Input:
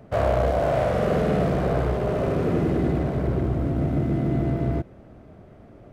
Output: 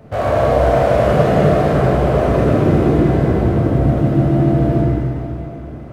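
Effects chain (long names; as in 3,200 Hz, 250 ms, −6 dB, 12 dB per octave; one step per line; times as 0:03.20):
in parallel at −1 dB: brickwall limiter −22 dBFS, peak gain reduction 12 dB
on the sum: dense smooth reverb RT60 3.1 s, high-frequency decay 0.85×, DRR −6.5 dB
level −1.5 dB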